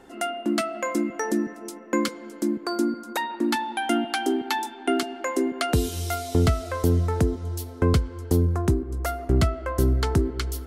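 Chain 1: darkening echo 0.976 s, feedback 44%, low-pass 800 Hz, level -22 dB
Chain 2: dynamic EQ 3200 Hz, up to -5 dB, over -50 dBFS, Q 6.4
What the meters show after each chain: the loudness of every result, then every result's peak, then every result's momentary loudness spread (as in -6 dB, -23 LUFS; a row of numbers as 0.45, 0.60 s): -25.5, -25.5 LUFS; -10.5, -10.5 dBFS; 7, 7 LU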